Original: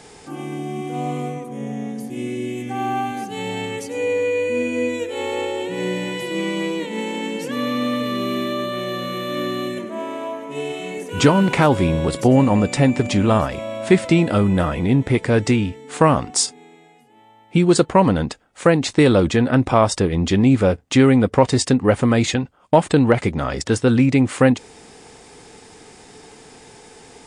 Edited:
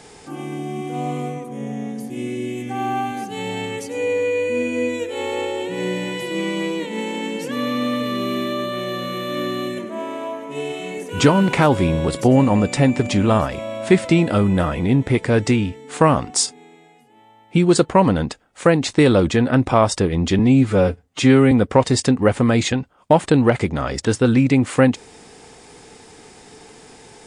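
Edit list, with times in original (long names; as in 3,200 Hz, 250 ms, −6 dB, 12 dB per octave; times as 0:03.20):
0:20.39–0:21.14: time-stretch 1.5×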